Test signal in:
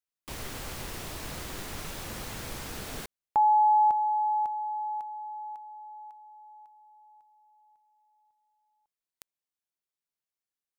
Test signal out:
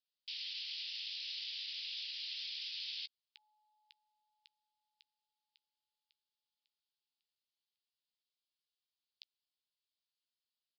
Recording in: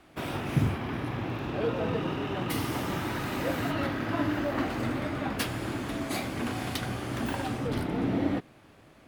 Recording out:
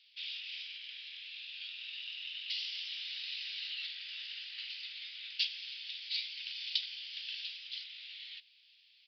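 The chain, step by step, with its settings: steep high-pass 2.9 kHz 36 dB/octave; doubling 14 ms -13.5 dB; resampled via 11.025 kHz; trim +6 dB

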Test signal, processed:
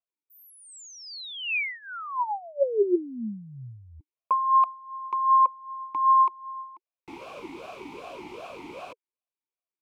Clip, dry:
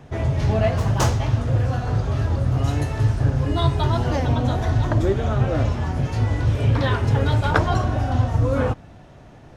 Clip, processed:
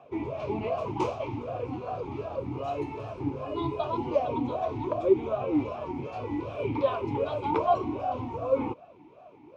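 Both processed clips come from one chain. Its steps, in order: dynamic bell 1.5 kHz, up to -4 dB, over -39 dBFS, Q 2.9; talking filter a-u 2.6 Hz; trim +6 dB

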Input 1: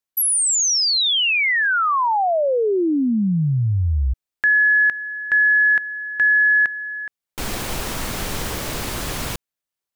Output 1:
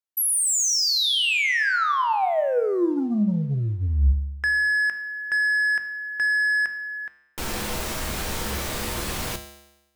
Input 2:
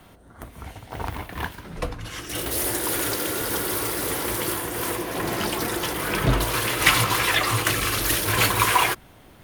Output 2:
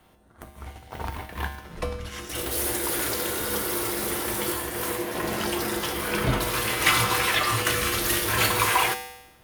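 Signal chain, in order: hum notches 50/100/150/200/250/300 Hz; waveshaping leveller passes 1; feedback comb 70 Hz, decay 0.96 s, harmonics odd, mix 80%; trim +6 dB

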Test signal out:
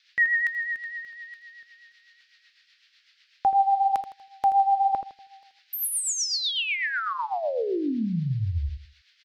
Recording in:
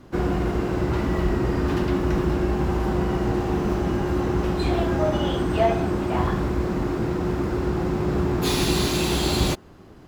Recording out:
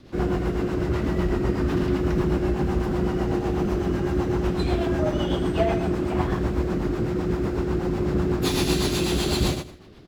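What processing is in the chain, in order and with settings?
feedback delay 80 ms, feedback 31%, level -8 dB; band noise 1.6–4.9 kHz -60 dBFS; rotary cabinet horn 8 Hz

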